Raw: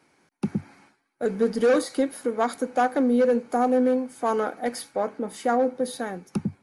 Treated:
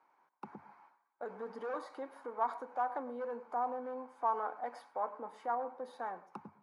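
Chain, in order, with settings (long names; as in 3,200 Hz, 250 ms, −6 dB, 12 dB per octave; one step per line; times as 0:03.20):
brickwall limiter −19 dBFS, peak gain reduction 9 dB
resonant band-pass 970 Hz, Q 4.2
on a send: convolution reverb RT60 0.30 s, pre-delay 92 ms, DRR 16.5 dB
on the sum: level +2 dB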